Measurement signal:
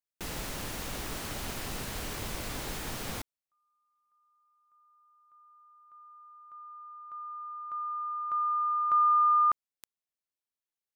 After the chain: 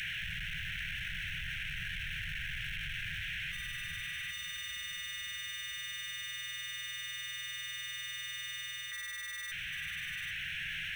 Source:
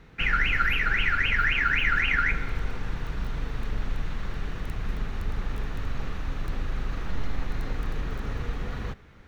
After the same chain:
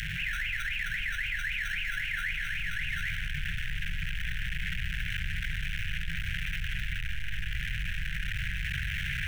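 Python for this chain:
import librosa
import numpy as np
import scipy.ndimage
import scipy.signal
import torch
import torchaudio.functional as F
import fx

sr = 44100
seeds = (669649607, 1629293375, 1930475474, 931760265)

p1 = fx.delta_mod(x, sr, bps=16000, step_db=-23.0)
p2 = fx.sample_hold(p1, sr, seeds[0], rate_hz=2400.0, jitter_pct=0)
p3 = p1 + (p2 * librosa.db_to_amplitude(-11.0))
p4 = fx.low_shelf_res(p3, sr, hz=410.0, db=-7.5, q=1.5)
p5 = p4 + 10.0 ** (-5.5 / 20.0) * np.pad(p4, (int(792 * sr / 1000.0), 0))[:len(p4)]
p6 = fx.rider(p5, sr, range_db=10, speed_s=0.5)
p7 = scipy.signal.sosfilt(scipy.signal.ellip(4, 1.0, 40, [170.0, 1600.0], 'bandstop', fs=sr, output='sos'), p6)
p8 = fx.env_flatten(p7, sr, amount_pct=70)
y = p8 * librosa.db_to_amplitude(-8.5)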